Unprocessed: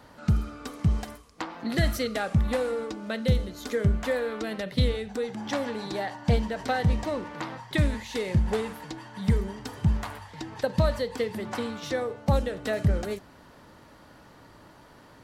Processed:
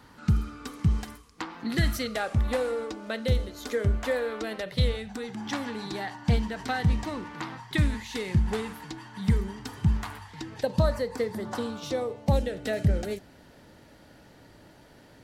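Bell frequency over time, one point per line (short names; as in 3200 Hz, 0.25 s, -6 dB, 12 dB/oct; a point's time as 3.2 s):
bell -11 dB 0.51 oct
1.9 s 610 Hz
2.33 s 170 Hz
4.52 s 170 Hz
5.26 s 560 Hz
10.38 s 560 Hz
10.97 s 3600 Hz
12.54 s 1100 Hz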